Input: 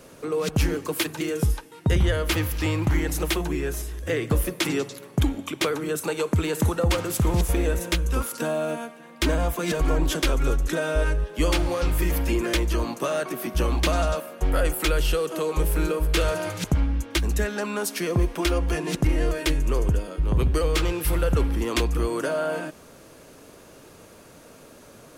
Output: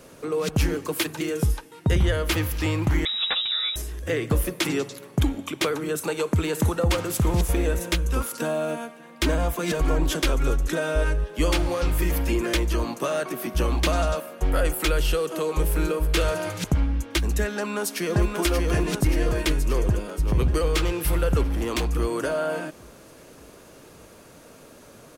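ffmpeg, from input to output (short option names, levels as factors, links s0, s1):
-filter_complex "[0:a]asettb=1/sr,asplit=3[s0][s1][s2];[s0]atrim=end=3.054[s3];[s1]atrim=start=3.05:end=3.76,asetpts=PTS-STARTPTS,afade=t=in:d=0.004:c=qsin,afade=t=out:st=0.706:d=0.004:c=qsin,lowpass=f=3300:t=q:w=0.5098,lowpass=f=3300:t=q:w=0.6013,lowpass=f=3300:t=q:w=0.9,lowpass=f=3300:t=q:w=2.563,afreqshift=-3900[s4];[s2]atrim=start=3.756[s5];[s3][s4]acrossfade=d=0.004:c1=hsin:c2=qsin[s6];[s6][s5]acrossfade=d=0.004:c1=qsin:c2=hsin,asplit=2[s7][s8];[s8]afade=t=in:st=17.51:d=0.01,afade=t=out:st=18.36:d=0.01,aecho=0:1:580|1160|1740|2320|2900|3480|4060|4640|5220|5800:0.668344|0.434424|0.282375|0.183544|0.119304|0.0775473|0.0504058|0.0327637|0.0212964|0.0138427[s9];[s7][s9]amix=inputs=2:normalize=0,asettb=1/sr,asplit=3[s10][s11][s12];[s10]atrim=end=21.434[s13];[s11]atrim=start=21.43:end=21.86,asetpts=PTS-STARTPTS,afade=t=in:d=0.004:c=qsin,afade=t=out:st=0.426:d=0.004:c=qsin,asoftclip=type=hard:threshold=0.0944[s14];[s12]atrim=start=21.856[s15];[s13][s14]acrossfade=d=0.004:c1=hsin:c2=qsin[s16];[s16][s15]acrossfade=d=0.004:c1=qsin:c2=hsin"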